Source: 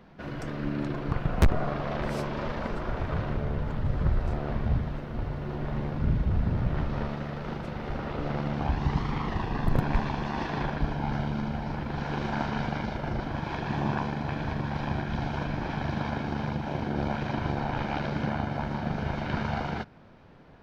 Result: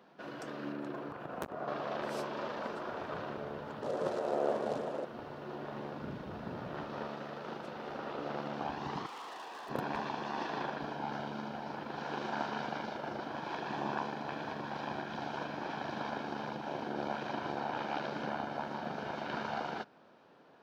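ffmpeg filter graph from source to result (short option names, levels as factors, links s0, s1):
-filter_complex "[0:a]asettb=1/sr,asplit=3[s0][s1][s2];[s0]atrim=end=0.724[s3];[s1]atrim=start=0.72:end=1.68,asetpts=PTS-STARTPTS,afade=t=in:d=0.004:c=qsin,afade=t=out:st=0.956:d=0.004:c=qsin,equalizer=f=4600:w=0.73:g=-6.5,acompressor=threshold=0.0501:ratio=4:attack=3.2:release=140:knee=1:detection=peak[s4];[s2]atrim=start=1.676[s5];[s3][s4]acrossfade=d=0.004:c1=hsin:c2=qsin[s6];[s6][s5]acrossfade=d=0.004:c1=qsin:c2=hsin,asettb=1/sr,asplit=3[s7][s8][s9];[s7]atrim=end=3.824[s10];[s8]atrim=start=3.82:end=5.05,asetpts=PTS-STARTPTS,afade=t=in:d=0.004:c=qsin,afade=t=out:st=1.226:d=0.004:c=qsin,equalizer=f=520:t=o:w=1.3:g=12.5,acrusher=bits=6:mode=log:mix=0:aa=0.000001,highpass=150,lowpass=5100[s11];[s9]atrim=start=5.046[s12];[s10][s11]acrossfade=d=0.004:c1=hsin:c2=qsin[s13];[s13][s12]acrossfade=d=0.004:c1=qsin:c2=hsin,asettb=1/sr,asplit=3[s14][s15][s16];[s14]atrim=end=9.064[s17];[s15]atrim=start=9.06:end=9.69,asetpts=PTS-STARTPTS,afade=t=in:d=0.004:c=qsin,afade=t=out:st=0.626:d=0.004:c=qsin,highpass=530,asoftclip=type=hard:threshold=0.0112[s18];[s16]atrim=start=9.686[s19];[s17][s18]acrossfade=d=0.004:c1=hsin:c2=qsin[s20];[s20][s19]acrossfade=d=0.004:c1=qsin:c2=hsin,highpass=320,equalizer=f=2100:t=o:w=0.35:g=-6.5,volume=0.668"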